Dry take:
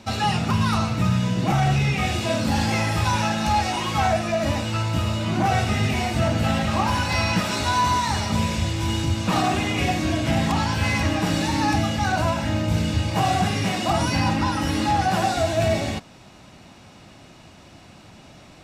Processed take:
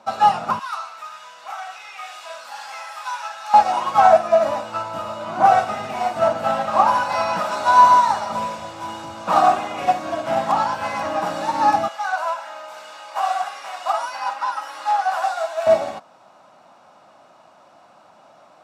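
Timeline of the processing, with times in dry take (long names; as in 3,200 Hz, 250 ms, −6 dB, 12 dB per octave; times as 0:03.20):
0:00.59–0:03.54: high-pass filter 1,500 Hz
0:11.88–0:15.67: high-pass filter 1,000 Hz
whole clip: high-pass filter 220 Hz 12 dB per octave; flat-topped bell 890 Hz +13.5 dB; expander for the loud parts 1.5 to 1, over −22 dBFS; level −2 dB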